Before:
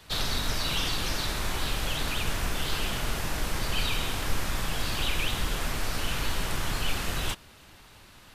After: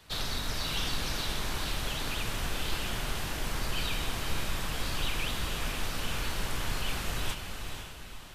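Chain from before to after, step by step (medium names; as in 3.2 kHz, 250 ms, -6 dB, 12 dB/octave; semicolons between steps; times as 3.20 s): echo that smears into a reverb 493 ms, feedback 45%, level -6 dB; trim -4.5 dB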